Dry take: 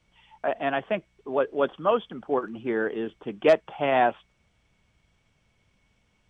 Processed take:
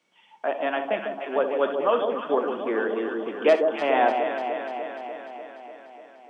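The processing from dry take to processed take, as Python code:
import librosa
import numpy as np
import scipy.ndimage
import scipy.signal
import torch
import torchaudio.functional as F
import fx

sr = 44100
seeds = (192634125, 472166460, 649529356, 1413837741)

p1 = scipy.signal.sosfilt(scipy.signal.butter(4, 240.0, 'highpass', fs=sr, output='sos'), x)
p2 = p1 + fx.echo_alternate(p1, sr, ms=148, hz=980.0, feedback_pct=82, wet_db=-5, dry=0)
y = fx.rev_gated(p2, sr, seeds[0], gate_ms=90, shape='rising', drr_db=10.0)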